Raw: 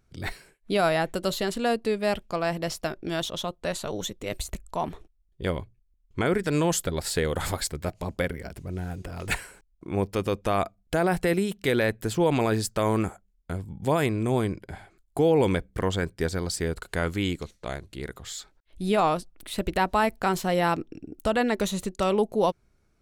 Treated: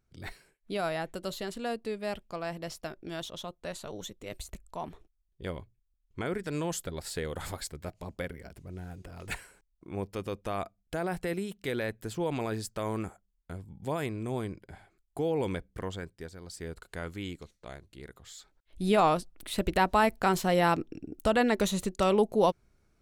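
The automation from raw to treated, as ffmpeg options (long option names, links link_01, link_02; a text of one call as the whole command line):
ffmpeg -i in.wav -af "volume=8.5dB,afade=type=out:start_time=15.73:duration=0.64:silence=0.334965,afade=type=in:start_time=16.37:duration=0.32:silence=0.421697,afade=type=in:start_time=18.38:duration=0.44:silence=0.316228" out.wav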